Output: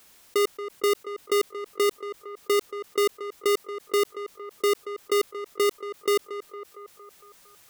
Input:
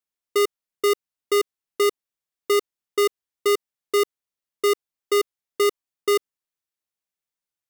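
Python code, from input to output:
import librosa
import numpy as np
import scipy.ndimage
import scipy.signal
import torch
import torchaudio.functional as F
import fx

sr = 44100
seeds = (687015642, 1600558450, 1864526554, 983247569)

y = np.clip(x, -10.0 ** (-20.5 / 20.0), 10.0 ** (-20.5 / 20.0))
y = fx.echo_banded(y, sr, ms=229, feedback_pct=48, hz=830.0, wet_db=-21)
y = fx.env_flatten(y, sr, amount_pct=50)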